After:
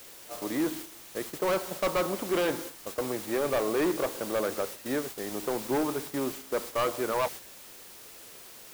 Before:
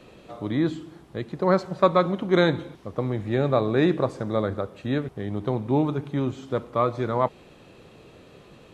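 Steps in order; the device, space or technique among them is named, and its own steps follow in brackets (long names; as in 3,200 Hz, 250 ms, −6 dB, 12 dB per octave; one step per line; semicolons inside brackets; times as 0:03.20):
aircraft radio (band-pass filter 350–2,500 Hz; hard clipping −23 dBFS, distortion −6 dB; white noise bed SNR 10 dB; noise gate −38 dBFS, range −7 dB)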